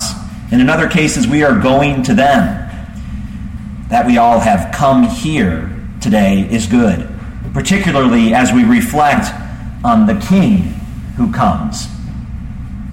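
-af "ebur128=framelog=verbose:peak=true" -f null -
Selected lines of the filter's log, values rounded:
Integrated loudness:
  I:         -12.0 LUFS
  Threshold: -23.0 LUFS
Loudness range:
  LRA:         2.2 LU
  Threshold: -32.8 LUFS
  LRA low:   -13.9 LUFS
  LRA high:  -11.7 LUFS
True peak:
  Peak:       -2.3 dBFS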